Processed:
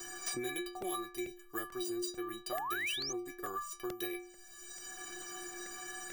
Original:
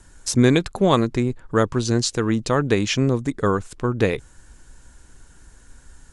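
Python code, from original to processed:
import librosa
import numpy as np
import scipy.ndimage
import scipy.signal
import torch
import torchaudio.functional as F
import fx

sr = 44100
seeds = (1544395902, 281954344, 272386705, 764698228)

y = fx.low_shelf(x, sr, hz=430.0, db=-9.0)
y = np.repeat(y[::3], 3)[:len(y)]
y = fx.high_shelf(y, sr, hz=8500.0, db=8.0)
y = fx.stiff_resonator(y, sr, f0_hz=350.0, decay_s=0.49, stiffness=0.03)
y = fx.spec_paint(y, sr, seeds[0], shape='rise', start_s=2.52, length_s=0.61, low_hz=580.0, high_hz=6700.0, level_db=-37.0)
y = fx.buffer_crackle(y, sr, first_s=0.82, period_s=0.44, block=64, kind='repeat')
y = fx.band_squash(y, sr, depth_pct=100)
y = y * 10.0 ** (2.0 / 20.0)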